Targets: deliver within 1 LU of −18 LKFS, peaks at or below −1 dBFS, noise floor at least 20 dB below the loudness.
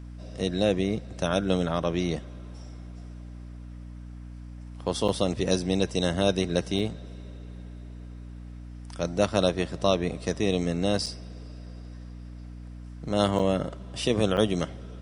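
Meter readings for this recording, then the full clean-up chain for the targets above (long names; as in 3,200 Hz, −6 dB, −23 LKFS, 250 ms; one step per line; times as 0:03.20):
number of dropouts 5; longest dropout 5.7 ms; mains hum 60 Hz; hum harmonics up to 300 Hz; level of the hum −39 dBFS; integrated loudness −27.0 LKFS; sample peak −6.5 dBFS; target loudness −18.0 LKFS
→ repair the gap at 0:05.08/0:06.79/0:11.06/0:13.39/0:14.37, 5.7 ms
hum removal 60 Hz, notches 5
level +9 dB
brickwall limiter −1 dBFS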